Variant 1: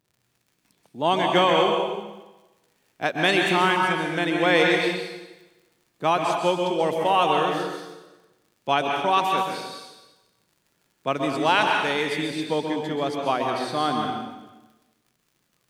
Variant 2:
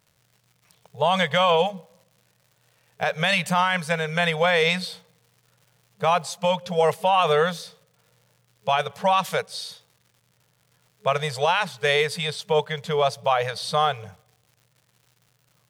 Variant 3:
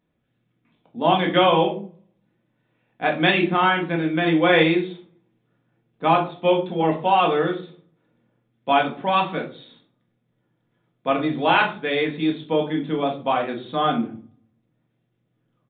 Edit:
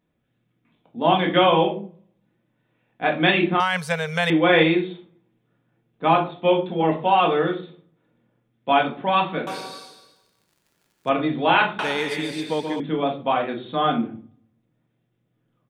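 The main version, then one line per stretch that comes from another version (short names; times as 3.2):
3
3.6–4.3 from 2
9.47–11.09 from 1
11.79–12.8 from 1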